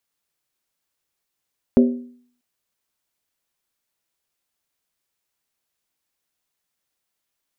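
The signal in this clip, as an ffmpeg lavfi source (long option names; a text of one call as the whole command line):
ffmpeg -f lavfi -i "aevalsrc='0.422*pow(10,-3*t/0.56)*sin(2*PI*245*t)+0.2*pow(10,-3*t/0.444)*sin(2*PI*390.5*t)+0.0944*pow(10,-3*t/0.383)*sin(2*PI*523.3*t)+0.0447*pow(10,-3*t/0.37)*sin(2*PI*562.5*t)+0.0211*pow(10,-3*t/0.344)*sin(2*PI*650*t)':duration=0.64:sample_rate=44100" out.wav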